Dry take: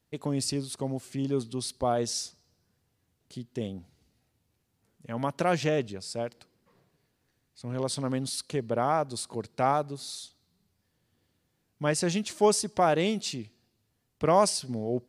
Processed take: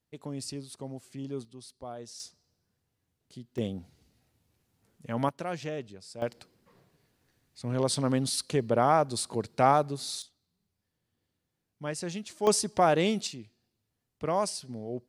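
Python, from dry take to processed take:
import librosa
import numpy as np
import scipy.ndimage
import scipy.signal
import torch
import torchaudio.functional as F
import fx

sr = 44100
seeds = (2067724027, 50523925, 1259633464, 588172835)

y = fx.gain(x, sr, db=fx.steps((0.0, -8.0), (1.45, -14.5), (2.2, -5.5), (3.58, 2.0), (5.29, -9.0), (6.22, 3.0), (10.22, -8.0), (12.47, 0.5), (13.27, -6.5)))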